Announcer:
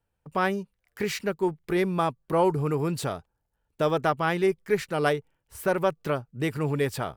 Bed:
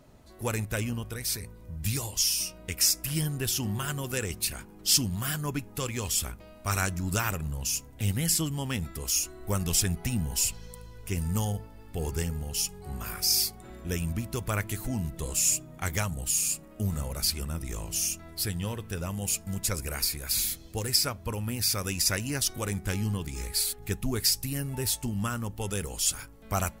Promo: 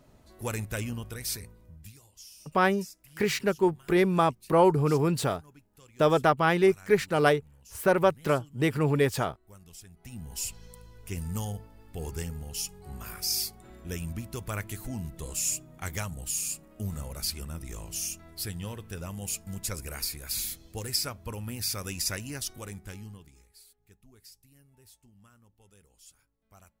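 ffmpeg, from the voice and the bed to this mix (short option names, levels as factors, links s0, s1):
-filter_complex "[0:a]adelay=2200,volume=1.26[s0];[1:a]volume=6.68,afade=t=out:st=1.33:d=0.6:silence=0.0891251,afade=t=in:st=9.94:d=0.7:silence=0.112202,afade=t=out:st=22.03:d=1.43:silence=0.0668344[s1];[s0][s1]amix=inputs=2:normalize=0"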